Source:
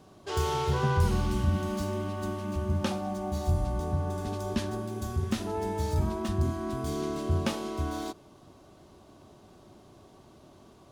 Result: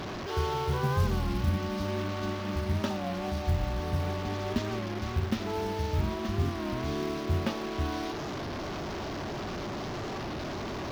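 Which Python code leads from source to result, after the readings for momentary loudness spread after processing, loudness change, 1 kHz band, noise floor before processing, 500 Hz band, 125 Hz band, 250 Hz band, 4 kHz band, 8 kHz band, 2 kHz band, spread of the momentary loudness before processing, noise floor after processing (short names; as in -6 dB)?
6 LU, -1.5 dB, 0.0 dB, -56 dBFS, 0.0 dB, -1.0 dB, 0.0 dB, +2.5 dB, -3.0 dB, +3.0 dB, 7 LU, -36 dBFS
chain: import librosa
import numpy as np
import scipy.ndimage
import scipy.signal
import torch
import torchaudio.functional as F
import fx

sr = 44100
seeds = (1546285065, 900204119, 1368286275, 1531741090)

p1 = fx.delta_mod(x, sr, bps=32000, step_db=-30.5)
p2 = fx.high_shelf(p1, sr, hz=4600.0, db=-7.5)
p3 = fx.rider(p2, sr, range_db=3, speed_s=0.5)
p4 = p2 + F.gain(torch.from_numpy(p3), 1.0).numpy()
p5 = fx.quant_companded(p4, sr, bits=6)
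p6 = fx.record_warp(p5, sr, rpm=33.33, depth_cents=100.0)
y = F.gain(torch.from_numpy(p6), -7.0).numpy()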